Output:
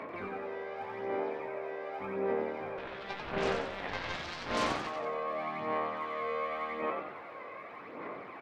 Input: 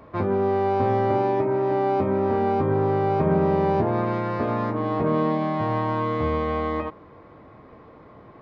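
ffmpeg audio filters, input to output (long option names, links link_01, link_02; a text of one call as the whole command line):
ffmpeg -i in.wav -filter_complex "[0:a]highpass=310,equalizer=frequency=2200:width_type=o:width=0.67:gain=10.5,alimiter=level_in=7.5dB:limit=-24dB:level=0:latency=1:release=16,volume=-7.5dB,aphaser=in_gain=1:out_gain=1:delay=2:decay=0.62:speed=0.87:type=sinusoidal,asettb=1/sr,asplit=3[link_01][link_02][link_03];[link_01]atrim=end=2.774[link_04];[link_02]atrim=start=2.77:end=4.87,asetpts=PTS-STARTPTS,afade=type=in:duration=0.004:curve=qsin,afade=type=out:start_time=2.096:duration=0.004:curve=qsin,aeval=exprs='0.0708*(cos(1*acos(clip(val(0)/0.0708,-1,1)))-cos(1*PI/2))+0.0224*(cos(7*acos(clip(val(0)/0.0708,-1,1)))-cos(7*PI/2))':channel_layout=same[link_05];[link_03]atrim=start=4.866[link_06];[link_04][link_05]acrossfade=duration=0.004:curve1=hsin:curve2=qsin[link_07];[link_07][link_06]acrossfade=duration=0.004:curve1=qsin:curve2=hsin,asplit=2[link_08][link_09];[link_09]adelay=21,volume=-7.5dB[link_10];[link_08][link_10]amix=inputs=2:normalize=0,asplit=7[link_11][link_12][link_13][link_14][link_15][link_16][link_17];[link_12]adelay=91,afreqshift=76,volume=-5dB[link_18];[link_13]adelay=182,afreqshift=152,volume=-11.7dB[link_19];[link_14]adelay=273,afreqshift=228,volume=-18.5dB[link_20];[link_15]adelay=364,afreqshift=304,volume=-25.2dB[link_21];[link_16]adelay=455,afreqshift=380,volume=-32dB[link_22];[link_17]adelay=546,afreqshift=456,volume=-38.7dB[link_23];[link_11][link_18][link_19][link_20][link_21][link_22][link_23]amix=inputs=7:normalize=0,volume=-1.5dB" out.wav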